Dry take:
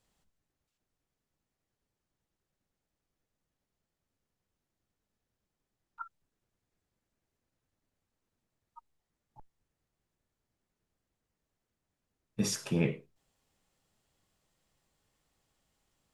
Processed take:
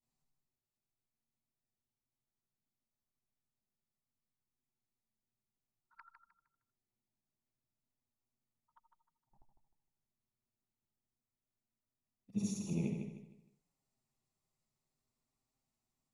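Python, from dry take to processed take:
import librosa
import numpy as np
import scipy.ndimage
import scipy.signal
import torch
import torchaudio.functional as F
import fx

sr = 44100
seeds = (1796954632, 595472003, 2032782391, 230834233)

y = fx.frame_reverse(x, sr, frame_ms=168.0)
y = fx.graphic_eq_31(y, sr, hz=(200, 500, 1600, 3150), db=(8, -7, -11, -10))
y = fx.env_flanger(y, sr, rest_ms=8.3, full_db=-42.5)
y = fx.echo_feedback(y, sr, ms=154, feedback_pct=33, wet_db=-6.5)
y = y * 10.0 ** (-5.5 / 20.0)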